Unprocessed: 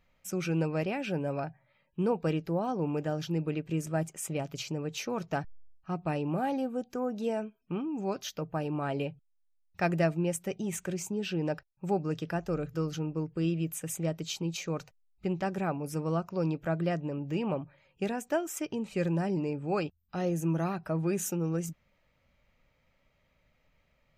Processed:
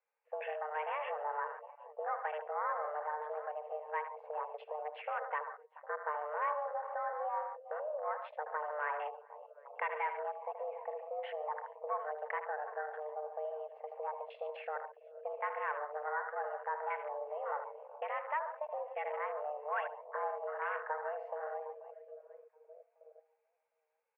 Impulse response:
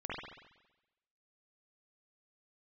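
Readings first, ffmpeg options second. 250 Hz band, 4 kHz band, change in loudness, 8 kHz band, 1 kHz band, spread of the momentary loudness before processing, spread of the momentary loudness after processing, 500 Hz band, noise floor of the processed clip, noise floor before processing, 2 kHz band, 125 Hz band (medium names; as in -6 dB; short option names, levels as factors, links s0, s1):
under -40 dB, under -15 dB, -6.5 dB, under -40 dB, +2.0 dB, 6 LU, 9 LU, -6.0 dB, -76 dBFS, -72 dBFS, -0.5 dB, under -40 dB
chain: -filter_complex "[0:a]asplit=2[s0][s1];[s1]adelay=1633,volume=0.0562,highshelf=f=4000:g=-36.7[s2];[s0][s2]amix=inputs=2:normalize=0,acrossover=split=780[s3][s4];[s3]acompressor=threshold=0.01:ratio=12[s5];[s5][s4]amix=inputs=2:normalize=0,asoftclip=type=hard:threshold=0.0282,asplit=2[s6][s7];[s7]aecho=0:1:77|135|143|393|432|758:0.376|0.224|0.224|0.126|0.158|0.211[s8];[s6][s8]amix=inputs=2:normalize=0,afwtdn=0.00794,highpass=f=170:t=q:w=0.5412,highpass=f=170:t=q:w=1.307,lowpass=f=2000:t=q:w=0.5176,lowpass=f=2000:t=q:w=0.7071,lowpass=f=2000:t=q:w=1.932,afreqshift=300,volume=1.26"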